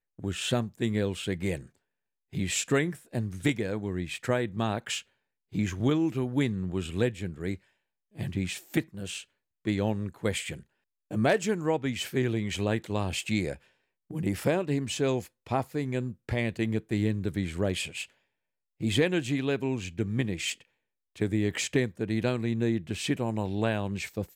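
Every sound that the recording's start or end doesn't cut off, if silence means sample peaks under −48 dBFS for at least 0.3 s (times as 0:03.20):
0:02.33–0:05.02
0:05.52–0:07.57
0:08.15–0:09.24
0:09.65–0:10.63
0:11.11–0:13.57
0:14.10–0:18.05
0:18.80–0:20.62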